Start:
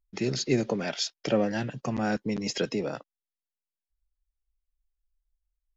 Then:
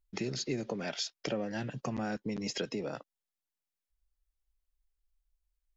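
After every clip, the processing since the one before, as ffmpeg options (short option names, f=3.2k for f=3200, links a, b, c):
-af "acompressor=threshold=-34dB:ratio=3"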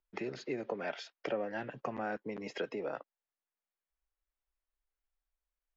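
-filter_complex "[0:a]acrossover=split=340 2600:gain=0.2 1 0.0891[a][b][c];[a][b][c]amix=inputs=3:normalize=0,volume=2dB"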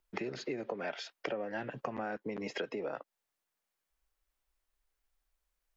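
-af "acompressor=threshold=-44dB:ratio=3,volume=7.5dB"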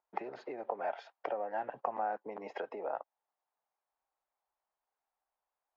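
-af "bandpass=f=810:t=q:w=3:csg=0,volume=8.5dB"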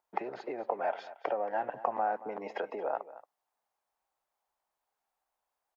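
-af "aecho=1:1:227:0.15,volume=4dB"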